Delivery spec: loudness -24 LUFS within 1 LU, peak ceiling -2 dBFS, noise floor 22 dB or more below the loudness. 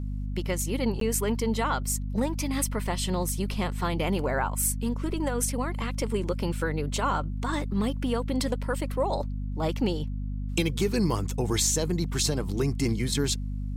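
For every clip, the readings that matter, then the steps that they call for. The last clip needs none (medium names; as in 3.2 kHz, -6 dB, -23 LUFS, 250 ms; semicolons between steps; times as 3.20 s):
dropouts 1; longest dropout 13 ms; hum 50 Hz; highest harmonic 250 Hz; hum level -29 dBFS; loudness -28.5 LUFS; peak level -10.5 dBFS; loudness target -24.0 LUFS
-> interpolate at 1.00 s, 13 ms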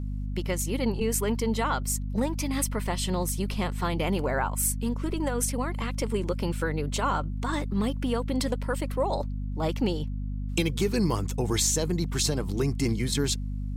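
dropouts 0; hum 50 Hz; highest harmonic 250 Hz; hum level -29 dBFS
-> de-hum 50 Hz, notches 5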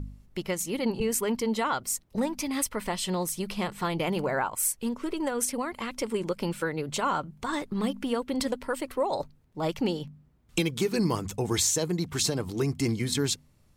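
hum not found; loudness -29.5 LUFS; peak level -12.0 dBFS; loudness target -24.0 LUFS
-> trim +5.5 dB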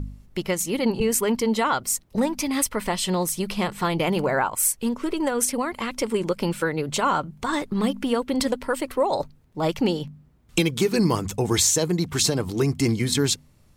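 loudness -24.0 LUFS; peak level -6.5 dBFS; noise floor -56 dBFS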